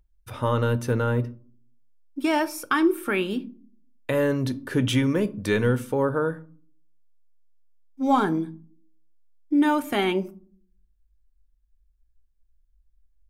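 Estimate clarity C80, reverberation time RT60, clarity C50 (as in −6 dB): 24.5 dB, 0.45 s, 20.0 dB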